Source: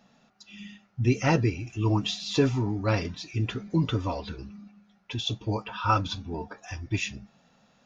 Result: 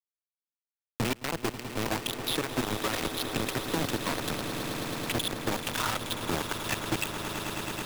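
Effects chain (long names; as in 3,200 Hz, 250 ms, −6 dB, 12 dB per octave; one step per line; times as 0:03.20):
high-pass filter 100 Hz 24 dB per octave
mains-hum notches 50/100/150/200 Hz
gate on every frequency bin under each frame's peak −25 dB strong
Chebyshev low-pass filter 3,900 Hz, order 4
harmonic and percussive parts rebalanced harmonic −10 dB
downward compressor 12 to 1, threshold −38 dBFS, peak gain reduction 17.5 dB
brickwall limiter −33.5 dBFS, peak gain reduction 7.5 dB
log-companded quantiser 2 bits
on a send: echo that builds up and dies away 108 ms, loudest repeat 8, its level −14.5 dB
on the sum: multiband upward and downward compressor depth 40%
level +3.5 dB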